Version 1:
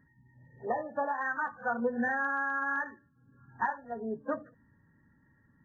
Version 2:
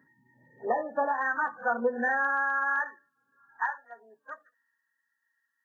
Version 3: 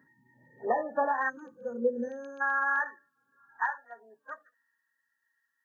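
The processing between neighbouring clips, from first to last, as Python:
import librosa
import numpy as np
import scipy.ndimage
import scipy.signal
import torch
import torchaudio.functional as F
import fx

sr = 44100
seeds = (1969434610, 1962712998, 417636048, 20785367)

y1 = fx.filter_sweep_highpass(x, sr, from_hz=280.0, to_hz=3000.0, start_s=1.63, end_s=4.94, q=0.83)
y1 = y1 * librosa.db_to_amplitude(4.0)
y2 = fx.spec_box(y1, sr, start_s=1.29, length_s=1.12, low_hz=580.0, high_hz=2200.0, gain_db=-27)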